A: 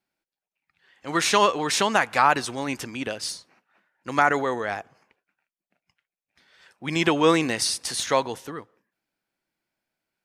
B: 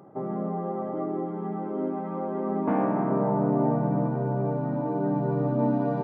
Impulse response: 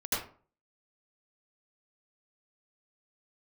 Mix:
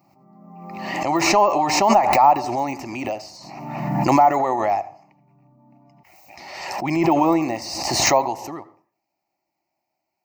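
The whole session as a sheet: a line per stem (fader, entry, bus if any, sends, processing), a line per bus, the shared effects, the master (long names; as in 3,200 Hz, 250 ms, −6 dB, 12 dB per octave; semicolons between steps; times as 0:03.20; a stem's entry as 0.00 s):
+0.5 dB, 0.00 s, send −22.5 dB, high-pass filter 60 Hz; de-essing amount 95%; flat-topped bell 530 Hz +14 dB
−19.5 dB, 0.00 s, no send, brickwall limiter −22 dBFS, peak gain reduction 8.5 dB; automatic ducking −8 dB, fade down 0.50 s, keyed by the first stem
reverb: on, RT60 0.45 s, pre-delay 72 ms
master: high-shelf EQ 7,900 Hz +7 dB; phaser with its sweep stopped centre 2,300 Hz, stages 8; background raised ahead of every attack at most 38 dB per second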